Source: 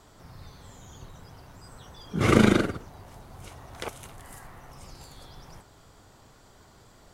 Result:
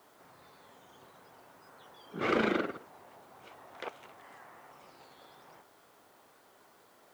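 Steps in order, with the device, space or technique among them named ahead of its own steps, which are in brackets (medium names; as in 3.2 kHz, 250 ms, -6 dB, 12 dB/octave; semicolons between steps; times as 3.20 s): tape answering machine (band-pass 340–2900 Hz; saturation -16 dBFS, distortion -14 dB; wow and flutter; white noise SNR 29 dB); trim -3.5 dB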